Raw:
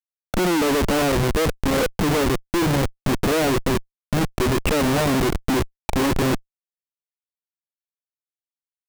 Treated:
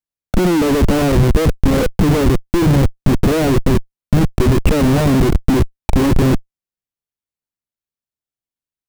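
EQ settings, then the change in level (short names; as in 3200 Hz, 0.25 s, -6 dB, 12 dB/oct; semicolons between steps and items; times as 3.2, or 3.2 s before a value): low shelf 330 Hz +12 dB; 0.0 dB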